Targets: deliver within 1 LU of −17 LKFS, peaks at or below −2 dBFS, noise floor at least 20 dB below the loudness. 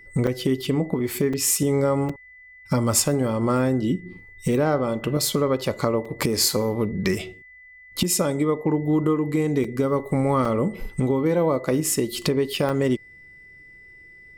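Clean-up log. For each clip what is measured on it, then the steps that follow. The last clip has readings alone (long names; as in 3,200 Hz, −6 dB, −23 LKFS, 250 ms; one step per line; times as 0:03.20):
number of dropouts 7; longest dropout 4.4 ms; interfering tone 2,000 Hz; level of the tone −45 dBFS; integrated loudness −23.0 LKFS; sample peak −6.0 dBFS; target loudness −17.0 LKFS
→ repair the gap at 0:00.27/0:01.33/0:02.09/0:06.05/0:09.64/0:10.45/0:12.69, 4.4 ms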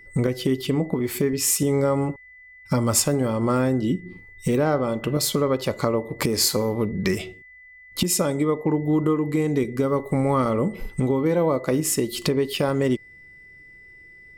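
number of dropouts 0; interfering tone 2,000 Hz; level of the tone −45 dBFS
→ notch filter 2,000 Hz, Q 30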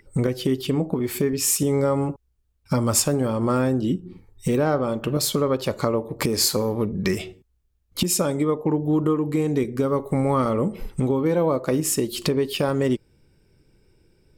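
interfering tone none found; integrated loudness −23.0 LKFS; sample peak −6.0 dBFS; target loudness −17.0 LKFS
→ level +6 dB
brickwall limiter −2 dBFS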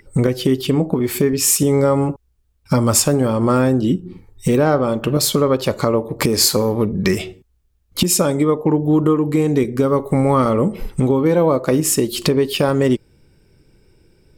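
integrated loudness −17.0 LKFS; sample peak −2.0 dBFS; background noise floor −61 dBFS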